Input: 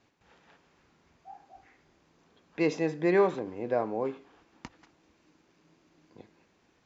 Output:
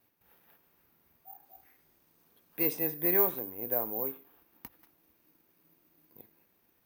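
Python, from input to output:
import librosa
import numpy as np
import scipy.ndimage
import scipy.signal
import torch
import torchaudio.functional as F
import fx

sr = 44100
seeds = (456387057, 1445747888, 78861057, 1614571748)

y = fx.high_shelf(x, sr, hz=fx.line((1.43, 4700.0), (3.44, 3600.0)), db=6.5, at=(1.43, 3.44), fade=0.02)
y = (np.kron(scipy.signal.resample_poly(y, 1, 3), np.eye(3)[0]) * 3)[:len(y)]
y = y * 10.0 ** (-7.5 / 20.0)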